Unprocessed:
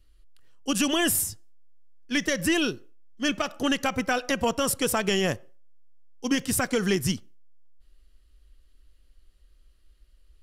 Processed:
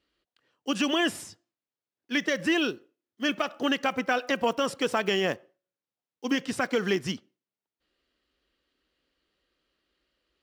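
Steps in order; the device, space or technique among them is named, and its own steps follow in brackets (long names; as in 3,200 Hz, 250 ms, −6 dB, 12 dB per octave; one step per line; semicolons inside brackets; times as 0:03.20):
early digital voice recorder (band-pass filter 240–4,000 Hz; one scale factor per block 7 bits)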